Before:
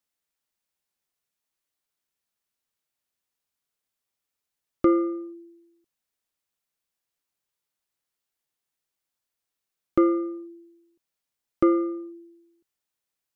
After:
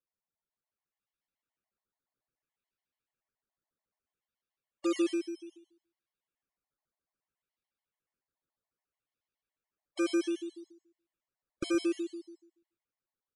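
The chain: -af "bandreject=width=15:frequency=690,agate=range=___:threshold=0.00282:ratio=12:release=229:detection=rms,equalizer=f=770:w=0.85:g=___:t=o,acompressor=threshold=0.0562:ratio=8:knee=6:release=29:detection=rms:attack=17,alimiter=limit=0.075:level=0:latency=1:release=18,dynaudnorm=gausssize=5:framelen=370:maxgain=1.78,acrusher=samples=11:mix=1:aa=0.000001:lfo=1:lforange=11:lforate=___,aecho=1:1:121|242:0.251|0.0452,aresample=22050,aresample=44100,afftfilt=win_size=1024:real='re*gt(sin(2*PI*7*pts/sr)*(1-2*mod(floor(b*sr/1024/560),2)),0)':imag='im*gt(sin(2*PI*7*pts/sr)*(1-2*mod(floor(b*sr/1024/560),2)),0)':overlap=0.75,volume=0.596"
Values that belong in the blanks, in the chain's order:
0.355, -7, 0.62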